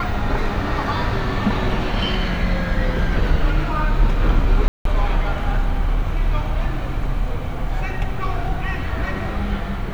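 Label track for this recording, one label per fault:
4.680000	4.850000	dropout 173 ms

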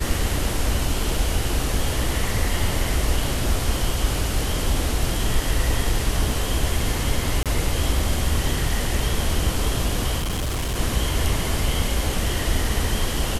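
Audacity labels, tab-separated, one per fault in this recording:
7.430000	7.460000	dropout 27 ms
10.180000	10.780000	clipped -21.5 dBFS

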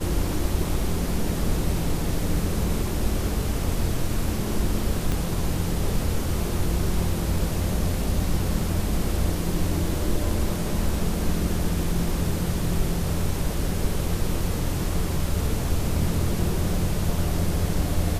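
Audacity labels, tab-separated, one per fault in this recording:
5.120000	5.120000	pop

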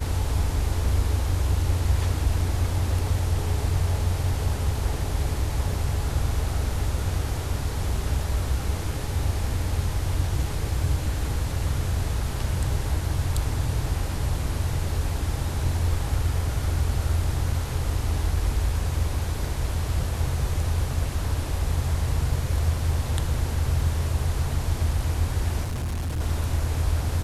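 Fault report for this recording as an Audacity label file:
25.630000	26.210000	clipped -25 dBFS

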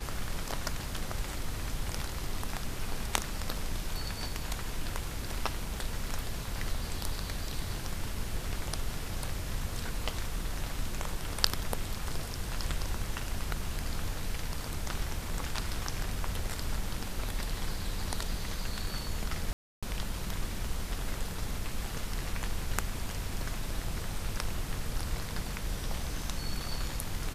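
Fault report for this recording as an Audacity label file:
19.530000	19.830000	dropout 296 ms

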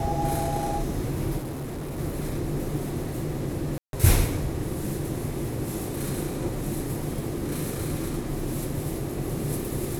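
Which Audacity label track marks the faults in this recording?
1.370000	1.990000	clipped -30 dBFS
3.780000	3.930000	dropout 152 ms

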